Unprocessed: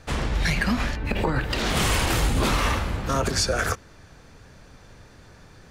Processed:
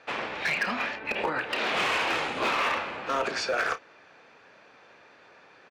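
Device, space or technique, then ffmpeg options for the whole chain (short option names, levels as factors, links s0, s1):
megaphone: -filter_complex "[0:a]highpass=470,lowpass=3100,equalizer=f=2500:t=o:w=0.23:g=6,asoftclip=type=hard:threshold=0.0891,asplit=2[s0][s1];[s1]adelay=32,volume=0.251[s2];[s0][s2]amix=inputs=2:normalize=0"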